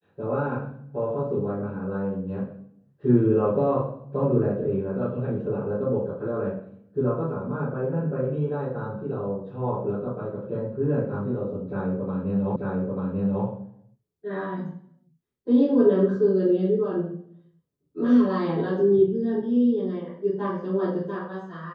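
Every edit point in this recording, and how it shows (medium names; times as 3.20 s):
12.56 s: repeat of the last 0.89 s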